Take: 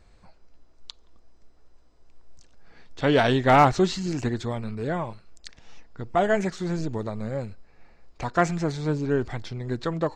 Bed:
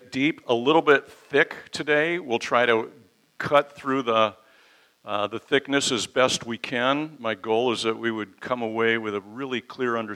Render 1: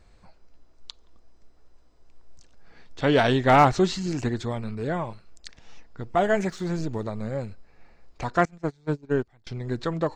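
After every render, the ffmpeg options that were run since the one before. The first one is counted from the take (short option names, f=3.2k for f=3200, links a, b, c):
-filter_complex "[0:a]asettb=1/sr,asplit=3[a][b][c];[a]atrim=end=6.024[d];[b]atrim=start=6.02:end=7.01,asetpts=PTS-STARTPTS,afade=t=in:d=0.004:c=qsin,afade=t=out:st=0.986:d=0.004:c=qsin,aeval=exprs='sgn(val(0))*max(abs(val(0))-0.00158,0)':c=same[e];[c]atrim=start=7.006[f];[d][e]acrossfade=d=0.004:c1=hsin:c2=qsin[g];[g][f]acrossfade=d=0.004:c1=qsin:c2=hsin,asettb=1/sr,asplit=3[h][i][j];[h]atrim=end=8.454[k];[i]atrim=start=8.45:end=9.47,asetpts=PTS-STARTPTS,afade=t=in:d=0.004:c=qsin,afade=t=out:st=1.016:d=0.004:c=qsin,agate=range=-27dB:threshold=-25dB:ratio=16:release=100:detection=peak[l];[j]atrim=start=9.466[m];[k][l]acrossfade=d=0.004:c1=hsin:c2=qsin[n];[n][m]acrossfade=d=0.004:c1=qsin:c2=hsin"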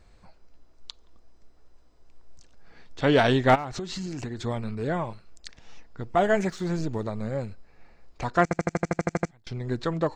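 -filter_complex "[0:a]asplit=3[a][b][c];[a]afade=t=out:st=3.54:d=0.02[d];[b]acompressor=threshold=-29dB:ratio=16:attack=3.2:release=140:knee=1:detection=peak,afade=t=in:st=3.54:d=0.02,afade=t=out:st=4.41:d=0.02[e];[c]afade=t=in:st=4.41:d=0.02[f];[d][e][f]amix=inputs=3:normalize=0,asplit=12[g][h][i][j][k][l][m][n][o][p][q][r];[g]atrim=end=8.512[s];[h]atrim=start=8.428:end=8.512[t];[i]atrim=start=8.428:end=8.512[u];[j]atrim=start=8.428:end=8.512[v];[k]atrim=start=8.428:end=8.512[w];[l]atrim=start=8.428:end=8.512[x];[m]atrim=start=8.428:end=8.512[y];[n]atrim=start=8.428:end=8.512[z];[o]atrim=start=8.428:end=8.512[aa];[p]atrim=start=8.428:end=8.512[ab];[q]atrim=start=8.428:end=8.512[ac];[r]atrim=start=9.308[ad];[s][t]acrossfade=d=0.004:c1=hsin:c2=hsin[ae];[ae][u]acrossfade=d=0.004:c1=hsin:c2=hsin[af];[af][v]acrossfade=d=0.004:c1=hsin:c2=hsin[ag];[ag][w]acrossfade=d=0.004:c1=hsin:c2=hsin[ah];[ah][x]acrossfade=d=0.004:c1=hsin:c2=hsin[ai];[ai][y]acrossfade=d=0.004:c1=hsin:c2=hsin[aj];[aj][z]acrossfade=d=0.004:c1=hsin:c2=hsin[ak];[ak][aa]acrossfade=d=0.004:c1=hsin:c2=hsin[al];[al][ab]acrossfade=d=0.004:c1=hsin:c2=hsin[am];[am][ac]acrossfade=d=0.004:c1=hsin:c2=hsin[an];[an][ad]acrossfade=d=0.004:c1=hsin:c2=hsin"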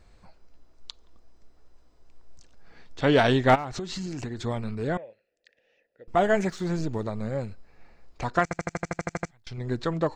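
-filter_complex "[0:a]asettb=1/sr,asplit=3[a][b][c];[a]atrim=end=4.974[d];[b]atrim=start=4.97:end=6.08,asetpts=PTS-STARTPTS,afade=t=in:d=0.004:c=qsin,afade=t=out:st=1.106:d=0.004:c=qsin,asplit=3[e][f][g];[e]bandpass=f=530:t=q:w=8,volume=0dB[h];[f]bandpass=f=1.84k:t=q:w=8,volume=-6dB[i];[g]bandpass=f=2.48k:t=q:w=8,volume=-9dB[j];[h][i][j]amix=inputs=3:normalize=0[k];[c]atrim=start=6.076[l];[d][k]acrossfade=d=0.004:c1=hsin:c2=qsin[m];[m][l]acrossfade=d=0.004:c1=qsin:c2=hsin,asettb=1/sr,asplit=3[n][o][p];[n]atrim=end=8.394[q];[o]atrim=start=8.39:end=9.58,asetpts=PTS-STARTPTS,afade=t=in:d=0.004:c=qsin,afade=t=out:st=1.186:d=0.004:c=qsin,equalizer=f=290:w=0.51:g=-7.5[r];[p]atrim=start=9.576[s];[q][r]acrossfade=d=0.004:c1=hsin:c2=qsin[t];[t][s]acrossfade=d=0.004:c1=qsin:c2=hsin"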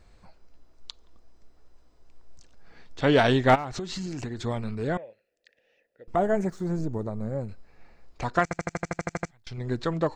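-filter_complex "[0:a]asettb=1/sr,asplit=3[a][b][c];[a]atrim=end=6.164[d];[b]atrim=start=6.16:end=7.49,asetpts=PTS-STARTPTS,afade=t=in:d=0.004:c=qsin,afade=t=out:st=1.326:d=0.004:c=qsin,equalizer=f=3.2k:t=o:w=2.2:g=-14.5[e];[c]atrim=start=7.486[f];[d][e]acrossfade=d=0.004:c1=hsin:c2=qsin[g];[g][f]acrossfade=d=0.004:c1=qsin:c2=hsin"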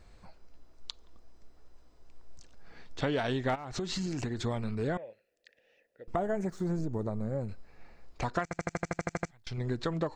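-af "acompressor=threshold=-28dB:ratio=6"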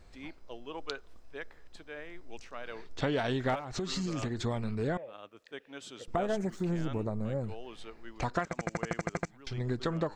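-filter_complex "[1:a]volume=-23.5dB[a];[0:a][a]amix=inputs=2:normalize=0"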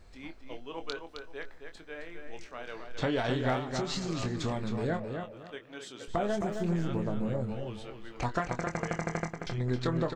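-filter_complex "[0:a]asplit=2[a][b];[b]adelay=24,volume=-8dB[c];[a][c]amix=inputs=2:normalize=0,asplit=2[d][e];[e]adelay=265,lowpass=f=4.4k:p=1,volume=-6dB,asplit=2[f][g];[g]adelay=265,lowpass=f=4.4k:p=1,volume=0.25,asplit=2[h][i];[i]adelay=265,lowpass=f=4.4k:p=1,volume=0.25[j];[f][h][j]amix=inputs=3:normalize=0[k];[d][k]amix=inputs=2:normalize=0"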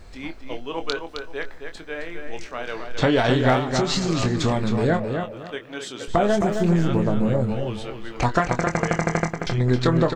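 -af "volume=11dB"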